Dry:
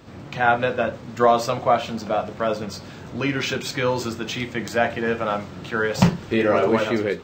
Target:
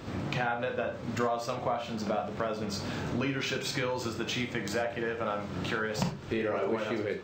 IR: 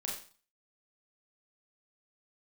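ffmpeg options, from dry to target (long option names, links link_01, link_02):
-filter_complex "[0:a]acompressor=threshold=-34dB:ratio=6,asplit=2[link_01][link_02];[1:a]atrim=start_sample=2205,afade=type=out:start_time=0.14:duration=0.01,atrim=end_sample=6615,highshelf=frequency=9800:gain=-9.5[link_03];[link_02][link_03]afir=irnorm=-1:irlink=0,volume=-1.5dB[link_04];[link_01][link_04]amix=inputs=2:normalize=0"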